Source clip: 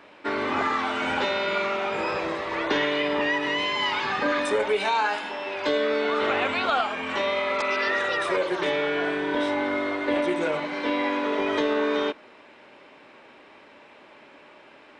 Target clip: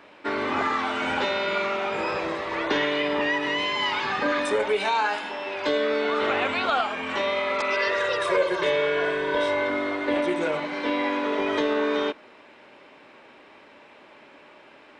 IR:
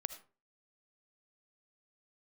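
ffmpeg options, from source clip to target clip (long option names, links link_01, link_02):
-filter_complex "[0:a]asettb=1/sr,asplit=3[link_01][link_02][link_03];[link_01]atrim=end=7.734[link_04];[link_02]atrim=start=7.73:end=9.7,asetpts=PTS-STARTPTS,afade=type=in:duration=0.004:curve=qsin,afade=type=out:start_time=1.966:duration=0.004:curve=qsin,aecho=1:1:1.9:0.6,atrim=end_sample=86877[link_05];[link_03]atrim=start=9.696[link_06];[link_04][link_05]acrossfade=duration=0.004:curve1=hsin:curve2=qsin[link_07];[link_07][link_06]acrossfade=duration=0.004:curve1=qsin:curve2=hsin"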